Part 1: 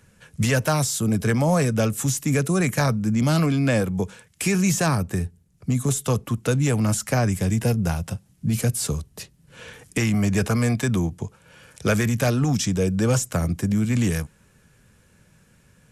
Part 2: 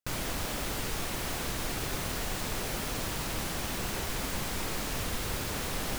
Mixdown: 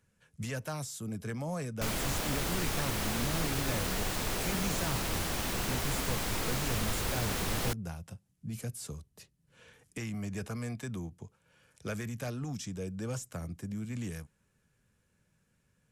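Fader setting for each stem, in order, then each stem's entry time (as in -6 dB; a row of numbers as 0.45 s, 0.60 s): -16.5 dB, +0.5 dB; 0.00 s, 1.75 s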